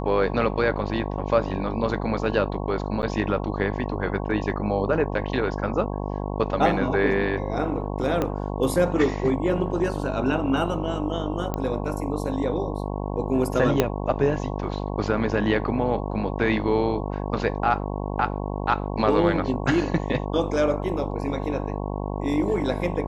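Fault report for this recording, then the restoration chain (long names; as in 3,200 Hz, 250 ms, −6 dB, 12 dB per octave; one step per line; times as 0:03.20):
mains buzz 50 Hz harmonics 22 −29 dBFS
0:03.02–0:03.03: drop-out 9 ms
0:08.22: click −12 dBFS
0:11.54: click −14 dBFS
0:13.80: click −5 dBFS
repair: click removal
hum removal 50 Hz, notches 22
repair the gap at 0:03.02, 9 ms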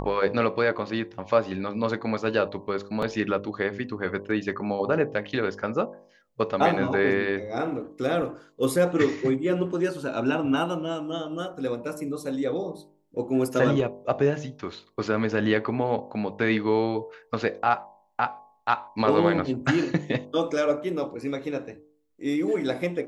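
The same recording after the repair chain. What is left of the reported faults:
0:08.22: click
0:13.80: click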